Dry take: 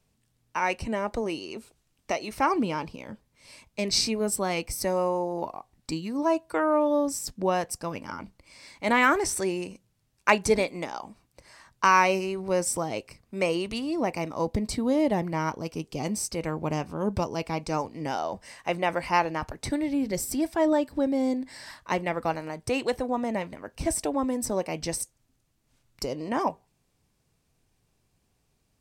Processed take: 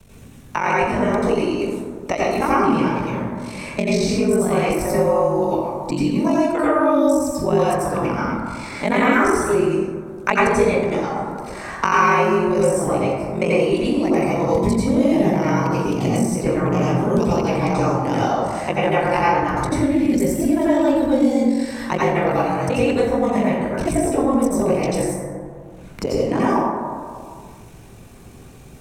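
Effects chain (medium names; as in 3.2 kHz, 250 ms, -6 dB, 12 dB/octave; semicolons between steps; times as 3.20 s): peaking EQ 4.8 kHz -7 dB 0.27 oct; ring modulator 23 Hz; bass shelf 320 Hz +6 dB; reverberation RT60 1.2 s, pre-delay 77 ms, DRR -9 dB; three bands compressed up and down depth 70%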